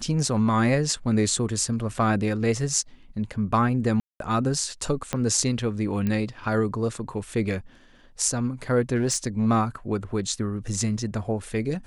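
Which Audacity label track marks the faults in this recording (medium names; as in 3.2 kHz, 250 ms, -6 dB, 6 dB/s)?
4.000000	4.200000	dropout 202 ms
5.130000	5.130000	pop -11 dBFS
6.070000	6.070000	pop -15 dBFS
8.950000	9.470000	clipped -18 dBFS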